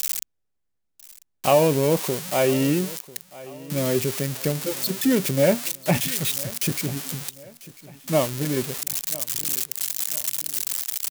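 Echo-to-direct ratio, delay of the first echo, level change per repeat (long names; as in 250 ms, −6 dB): −18.5 dB, 995 ms, −7.5 dB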